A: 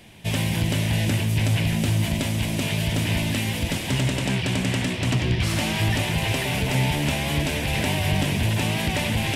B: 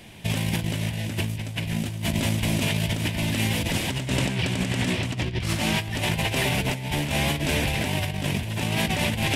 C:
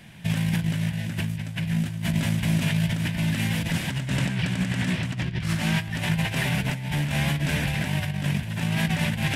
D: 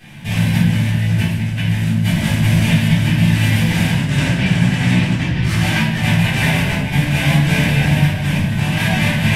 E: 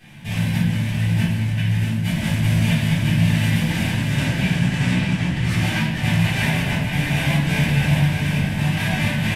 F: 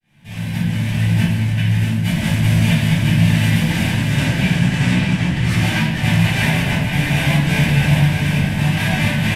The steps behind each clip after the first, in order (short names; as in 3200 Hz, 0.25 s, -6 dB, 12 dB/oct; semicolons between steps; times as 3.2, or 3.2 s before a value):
negative-ratio compressor -25 dBFS, ratio -0.5
fifteen-band EQ 160 Hz +11 dB, 400 Hz -5 dB, 1600 Hz +8 dB; gain -5 dB
shoebox room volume 290 m³, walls mixed, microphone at 3.7 m; gain -1 dB
echo 0.629 s -5.5 dB; gain -5.5 dB
opening faded in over 0.95 s; gain +3.5 dB